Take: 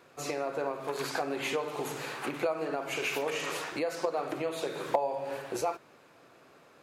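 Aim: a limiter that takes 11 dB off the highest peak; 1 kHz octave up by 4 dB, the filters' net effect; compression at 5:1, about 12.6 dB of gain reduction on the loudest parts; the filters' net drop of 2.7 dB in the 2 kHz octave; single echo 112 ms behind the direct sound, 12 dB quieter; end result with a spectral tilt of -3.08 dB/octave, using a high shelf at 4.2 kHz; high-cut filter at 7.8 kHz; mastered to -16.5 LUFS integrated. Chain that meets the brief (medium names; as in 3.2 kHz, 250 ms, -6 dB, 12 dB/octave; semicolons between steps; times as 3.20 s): low-pass 7.8 kHz; peaking EQ 1 kHz +6.5 dB; peaking EQ 2 kHz -7.5 dB; treble shelf 4.2 kHz +7 dB; compression 5:1, threshold -34 dBFS; peak limiter -31 dBFS; delay 112 ms -12 dB; trim +23.5 dB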